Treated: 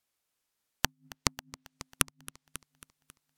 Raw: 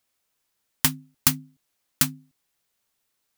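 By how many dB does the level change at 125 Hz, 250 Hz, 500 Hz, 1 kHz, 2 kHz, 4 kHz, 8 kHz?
-8.5, -9.5, +3.5, -1.5, -3.5, -6.5, -7.5 dB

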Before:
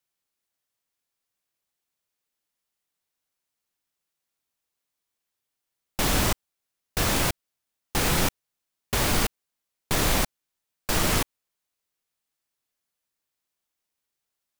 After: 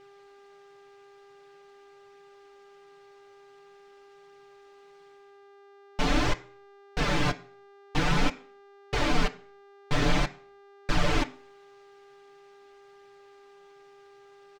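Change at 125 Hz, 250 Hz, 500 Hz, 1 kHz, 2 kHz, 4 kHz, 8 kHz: -1.5, 0.0, -1.0, -1.0, -1.5, -4.5, -13.5 dB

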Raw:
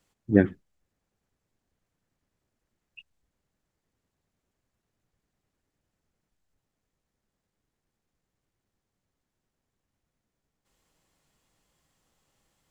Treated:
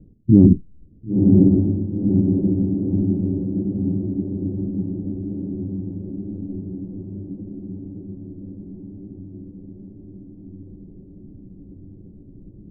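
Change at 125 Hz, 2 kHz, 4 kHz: +18.0 dB, under -30 dB, n/a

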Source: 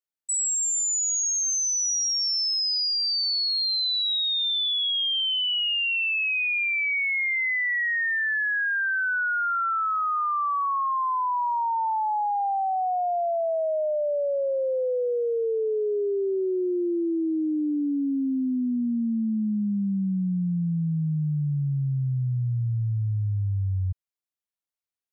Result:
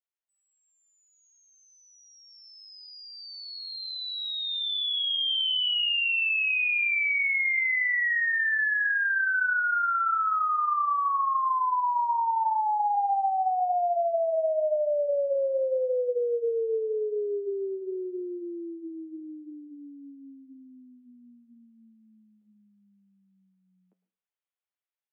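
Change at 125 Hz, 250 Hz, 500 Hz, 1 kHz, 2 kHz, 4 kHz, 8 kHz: under -40 dB, -16.0 dB, -1.0 dB, 0.0 dB, 0.0 dB, -5.0 dB, n/a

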